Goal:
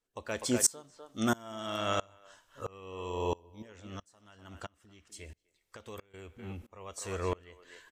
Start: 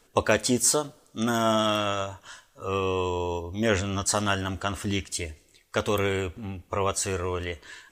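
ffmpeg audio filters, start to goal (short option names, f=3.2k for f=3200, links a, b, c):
-filter_complex "[0:a]asettb=1/sr,asplit=3[a][b][c];[a]atrim=end=3.624[d];[b]atrim=start=3.62:end=6.14,asetpts=PTS-STARTPTS,afade=t=in:d=0.004:c=qsin,afade=t=out:st=2.516:d=0.004:c=qsin,acompressor=threshold=-38dB:ratio=12[e];[c]atrim=start=6.136[f];[d][e]acrossfade=d=0.004:c1=hsin:c2=qsin[g];[g][f]acrossfade=d=0.004:c1=qsin:c2=hsin,asplit=2[h][i];[i]adelay=250,highpass=300,lowpass=3.4k,asoftclip=type=hard:threshold=-13.5dB,volume=-11dB[j];[h][j]amix=inputs=2:normalize=0,aeval=exprs='val(0)*pow(10,-28*if(lt(mod(-1.5*n/s,1),2*abs(-1.5)/1000),1-mod(-1.5*n/s,1)/(2*abs(-1.5)/1000),(mod(-1.5*n/s,1)-2*abs(-1.5)/1000)/(1-2*abs(-1.5)/1000))/20)':c=same"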